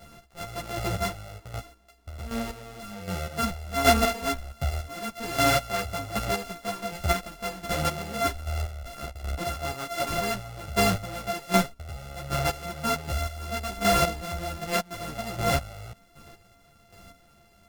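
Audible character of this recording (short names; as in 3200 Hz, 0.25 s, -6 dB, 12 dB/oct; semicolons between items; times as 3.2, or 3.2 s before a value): a buzz of ramps at a fixed pitch in blocks of 64 samples; chopped level 1.3 Hz, depth 65%, duty 25%; a shimmering, thickened sound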